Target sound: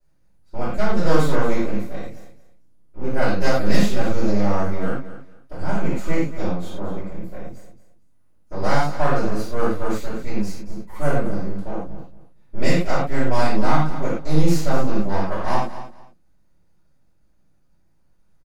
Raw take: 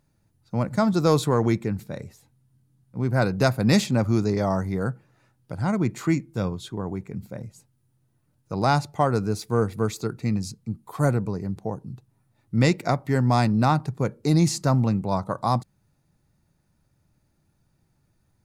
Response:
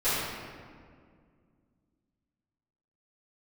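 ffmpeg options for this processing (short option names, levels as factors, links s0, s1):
-filter_complex "[0:a]aeval=exprs='max(val(0),0)':c=same,aecho=1:1:226|452:0.211|0.0444[s0];[1:a]atrim=start_sample=2205,atrim=end_sample=6615,asetrate=52920,aresample=44100[s1];[s0][s1]afir=irnorm=-1:irlink=0,volume=0.473"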